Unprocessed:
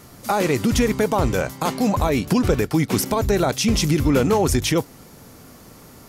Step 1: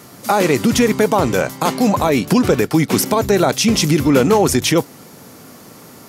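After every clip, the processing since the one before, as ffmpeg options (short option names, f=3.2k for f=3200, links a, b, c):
-af "highpass=140,volume=5.5dB"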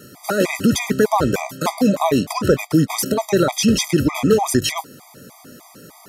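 -af "afftfilt=real='re*gt(sin(2*PI*3.3*pts/sr)*(1-2*mod(floor(b*sr/1024/640),2)),0)':imag='im*gt(sin(2*PI*3.3*pts/sr)*(1-2*mod(floor(b*sr/1024/640),2)),0)':win_size=1024:overlap=0.75"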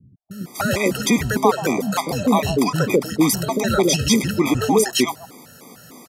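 -filter_complex "[0:a]acrossover=split=180|580[a][b][c];[c]adelay=310[d];[b]adelay=450[e];[a][e][d]amix=inputs=3:normalize=0,volume=1dB"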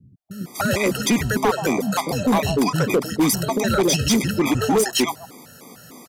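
-af "volume=13dB,asoftclip=hard,volume=-13dB"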